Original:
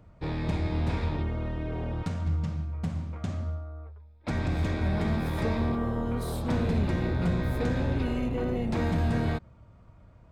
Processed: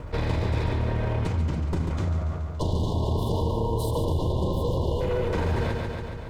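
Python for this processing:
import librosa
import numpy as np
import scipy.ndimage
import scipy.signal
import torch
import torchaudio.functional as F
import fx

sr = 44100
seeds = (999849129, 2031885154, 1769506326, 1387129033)

p1 = fx.lower_of_two(x, sr, delay_ms=2.0)
p2 = fx.rider(p1, sr, range_db=10, speed_s=0.5)
p3 = p1 + (p2 * librosa.db_to_amplitude(3.0))
p4 = fx.stretch_grains(p3, sr, factor=0.61, grain_ms=77.0)
p5 = fx.spec_erase(p4, sr, start_s=2.42, length_s=2.59, low_hz=1100.0, high_hz=2800.0)
p6 = p5 + fx.echo_feedback(p5, sr, ms=141, feedback_pct=52, wet_db=-7.0, dry=0)
p7 = fx.env_flatten(p6, sr, amount_pct=50)
y = p7 * librosa.db_to_amplitude(-5.0)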